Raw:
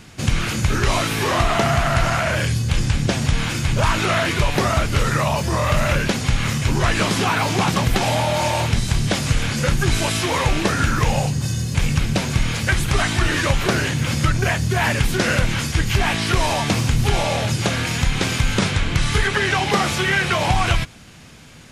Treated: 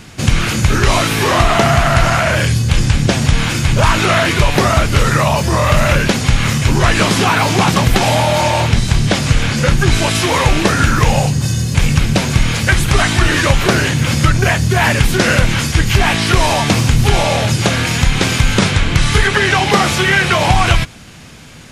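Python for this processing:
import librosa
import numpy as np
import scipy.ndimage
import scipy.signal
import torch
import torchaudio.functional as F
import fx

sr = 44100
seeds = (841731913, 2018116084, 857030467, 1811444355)

y = fx.high_shelf(x, sr, hz=9300.0, db=-7.5, at=(8.41, 10.15))
y = F.gain(torch.from_numpy(y), 6.5).numpy()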